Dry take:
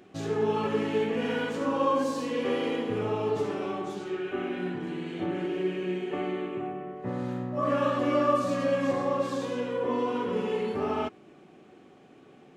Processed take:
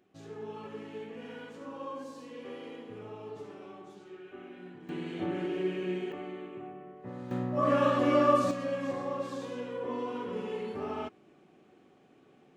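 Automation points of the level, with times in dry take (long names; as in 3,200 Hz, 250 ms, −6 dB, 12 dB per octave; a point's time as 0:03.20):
−15 dB
from 0:04.89 −2.5 dB
from 0:06.12 −9.5 dB
from 0:07.31 +0.5 dB
from 0:08.51 −7 dB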